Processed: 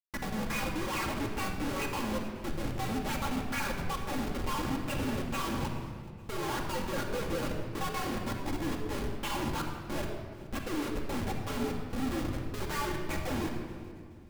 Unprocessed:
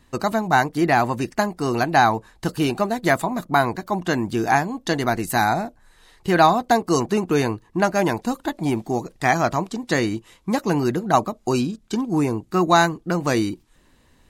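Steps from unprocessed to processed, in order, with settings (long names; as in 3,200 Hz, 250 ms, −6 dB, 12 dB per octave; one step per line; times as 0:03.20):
partials spread apart or drawn together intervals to 126%
mains-hum notches 60/120/180/240/300/360 Hz
LFO wah 2.3 Hz 260–2,300 Hz, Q 2.1
comparator with hysteresis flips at −37 dBFS
feedback echo with a high-pass in the loop 426 ms, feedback 39%, level −20.5 dB
convolution reverb RT60 1.9 s, pre-delay 4 ms, DRR 0 dB
level −4.5 dB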